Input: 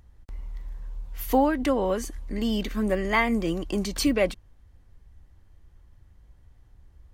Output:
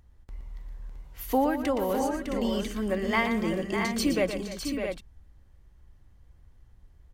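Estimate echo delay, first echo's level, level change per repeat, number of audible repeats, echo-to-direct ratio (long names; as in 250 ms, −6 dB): 118 ms, −9.5 dB, repeats not evenly spaced, 4, −3.0 dB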